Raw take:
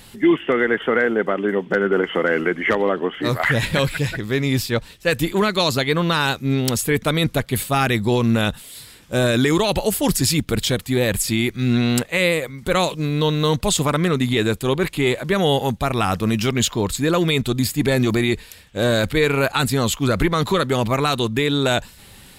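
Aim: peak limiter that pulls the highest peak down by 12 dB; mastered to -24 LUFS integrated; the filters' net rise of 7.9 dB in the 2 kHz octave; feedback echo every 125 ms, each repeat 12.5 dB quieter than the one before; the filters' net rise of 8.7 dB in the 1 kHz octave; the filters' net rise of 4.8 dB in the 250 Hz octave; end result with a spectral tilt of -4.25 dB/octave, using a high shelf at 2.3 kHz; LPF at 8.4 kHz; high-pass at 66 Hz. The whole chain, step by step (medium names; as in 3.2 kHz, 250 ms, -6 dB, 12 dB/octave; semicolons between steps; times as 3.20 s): high-pass 66 Hz; low-pass 8.4 kHz; peaking EQ 250 Hz +5.5 dB; peaking EQ 1 kHz +8.5 dB; peaking EQ 2 kHz +3.5 dB; treble shelf 2.3 kHz +7 dB; peak limiter -10 dBFS; feedback delay 125 ms, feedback 24%, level -12.5 dB; trim -4.5 dB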